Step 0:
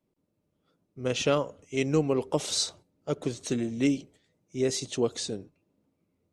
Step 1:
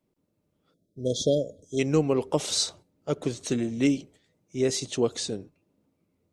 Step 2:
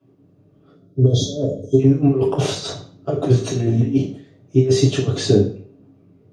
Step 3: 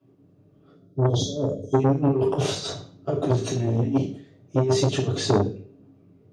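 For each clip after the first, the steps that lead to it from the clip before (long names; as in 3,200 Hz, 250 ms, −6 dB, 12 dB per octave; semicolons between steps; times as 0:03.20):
time-frequency box erased 0:00.74–0:01.79, 700–3,200 Hz; level +2 dB
compressor whose output falls as the input rises −30 dBFS, ratio −0.5; convolution reverb RT60 0.50 s, pre-delay 3 ms, DRR −7 dB; level −6.5 dB
saturating transformer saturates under 560 Hz; level −3 dB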